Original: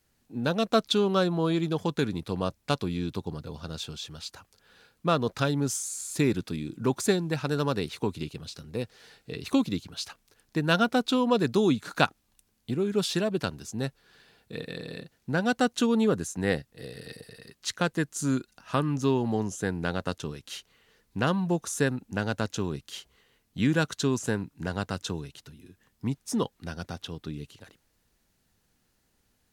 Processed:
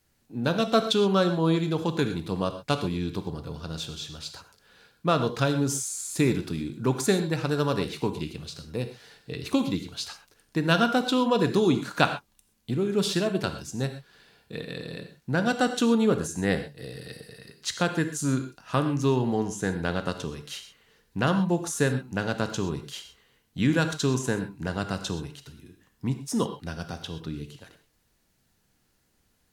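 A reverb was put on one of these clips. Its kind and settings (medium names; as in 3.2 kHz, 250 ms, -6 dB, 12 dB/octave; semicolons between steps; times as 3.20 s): gated-style reverb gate 150 ms flat, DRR 7.5 dB; trim +1 dB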